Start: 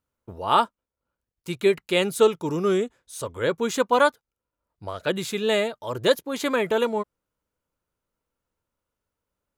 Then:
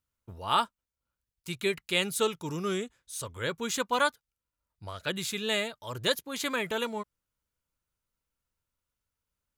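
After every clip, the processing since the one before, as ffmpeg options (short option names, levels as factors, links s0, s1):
-af "equalizer=f=460:t=o:w=2.9:g=-11"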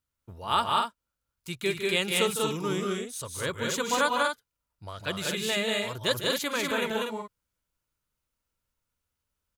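-af "aecho=1:1:154.5|192.4|242:0.316|0.794|0.501"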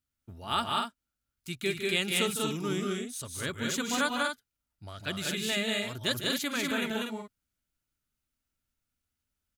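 -af "equalizer=f=250:t=o:w=0.33:g=6,equalizer=f=500:t=o:w=0.33:g=-9,equalizer=f=1000:t=o:w=0.33:g=-10,volume=0.841"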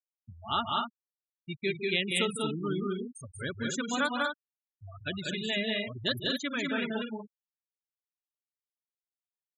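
-af "afftfilt=real='re*gte(hypot(re,im),0.0355)':imag='im*gte(hypot(re,im),0.0355)':win_size=1024:overlap=0.75"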